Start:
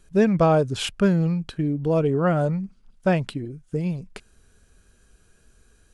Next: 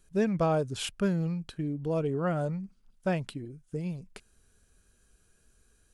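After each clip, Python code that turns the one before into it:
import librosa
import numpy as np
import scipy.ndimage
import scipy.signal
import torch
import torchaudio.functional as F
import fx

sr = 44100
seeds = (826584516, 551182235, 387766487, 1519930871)

y = fx.high_shelf(x, sr, hz=7400.0, db=8.0)
y = F.gain(torch.from_numpy(y), -8.5).numpy()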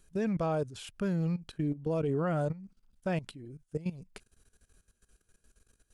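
y = fx.level_steps(x, sr, step_db=16)
y = F.gain(torch.from_numpy(y), 2.5).numpy()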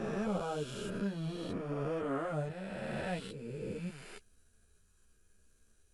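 y = fx.spec_swells(x, sr, rise_s=2.96)
y = fx.ensemble(y, sr)
y = F.gain(torch.from_numpy(y), -4.5).numpy()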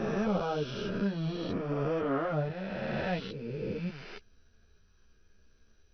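y = fx.brickwall_lowpass(x, sr, high_hz=6100.0)
y = F.gain(torch.from_numpy(y), 5.0).numpy()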